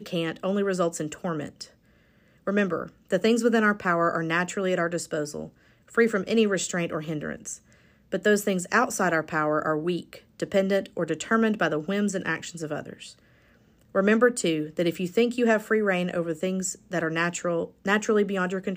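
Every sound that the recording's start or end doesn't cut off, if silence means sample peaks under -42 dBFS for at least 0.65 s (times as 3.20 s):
2.47–13.13 s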